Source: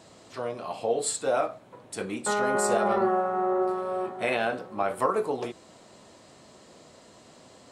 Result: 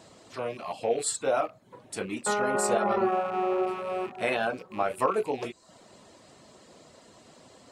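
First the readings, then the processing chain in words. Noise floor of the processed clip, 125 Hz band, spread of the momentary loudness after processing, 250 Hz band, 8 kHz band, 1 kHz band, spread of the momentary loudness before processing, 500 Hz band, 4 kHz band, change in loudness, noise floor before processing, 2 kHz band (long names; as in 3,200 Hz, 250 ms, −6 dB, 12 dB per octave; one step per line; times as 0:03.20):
−56 dBFS, −1.0 dB, 10 LU, −1.5 dB, −0.5 dB, −1.5 dB, 12 LU, −1.0 dB, −0.5 dB, −1.0 dB, −54 dBFS, −1.0 dB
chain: loose part that buzzes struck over −47 dBFS, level −34 dBFS
reverb reduction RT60 0.52 s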